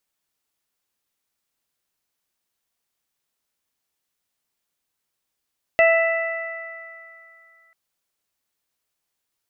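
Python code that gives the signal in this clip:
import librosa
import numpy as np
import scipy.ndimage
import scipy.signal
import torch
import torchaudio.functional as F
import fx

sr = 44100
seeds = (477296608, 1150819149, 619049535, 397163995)

y = fx.additive(sr, length_s=1.94, hz=661.0, level_db=-12.5, upper_db=(-15.0, -3.5, -9.0), decay_s=2.05, upper_decays_s=(3.25, 2.89, 1.57))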